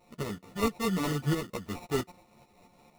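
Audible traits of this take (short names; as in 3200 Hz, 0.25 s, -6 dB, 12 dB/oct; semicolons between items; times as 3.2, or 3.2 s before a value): a buzz of ramps at a fixed pitch in blocks of 8 samples; tremolo saw up 4.5 Hz, depth 60%; aliases and images of a low sample rate 1600 Hz, jitter 0%; a shimmering, thickened sound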